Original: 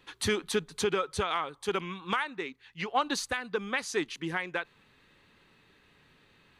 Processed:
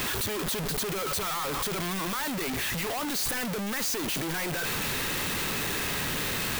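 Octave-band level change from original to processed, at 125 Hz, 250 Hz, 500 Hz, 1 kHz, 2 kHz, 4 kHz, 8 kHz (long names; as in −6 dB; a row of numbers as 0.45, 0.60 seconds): +8.0, +4.0, −1.5, 0.0, +3.0, +6.0, +9.5 decibels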